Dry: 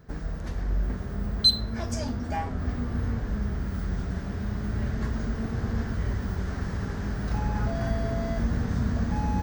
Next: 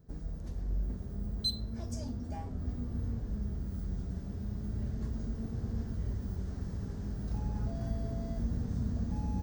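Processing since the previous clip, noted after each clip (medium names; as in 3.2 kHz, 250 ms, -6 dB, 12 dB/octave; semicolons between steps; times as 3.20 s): peaking EQ 1.7 kHz -14 dB 2.5 oct; trim -6.5 dB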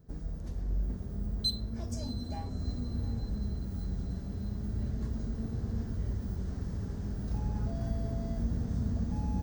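echo that smears into a reverb 717 ms, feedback 55%, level -15 dB; trim +1.5 dB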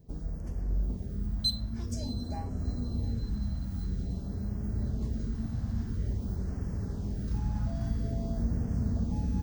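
LFO notch sine 0.49 Hz 400–3900 Hz; trim +2 dB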